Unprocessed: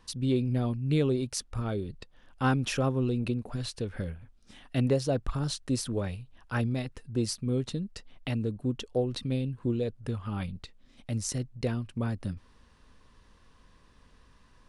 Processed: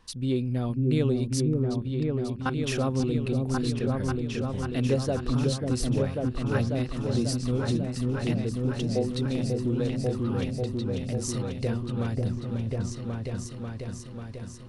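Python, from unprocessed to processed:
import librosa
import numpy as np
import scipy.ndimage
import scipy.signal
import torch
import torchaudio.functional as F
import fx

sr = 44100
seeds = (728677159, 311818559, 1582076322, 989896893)

p1 = fx.level_steps(x, sr, step_db=23, at=(1.46, 2.58))
y = p1 + fx.echo_opening(p1, sr, ms=542, hz=400, octaves=2, feedback_pct=70, wet_db=0, dry=0)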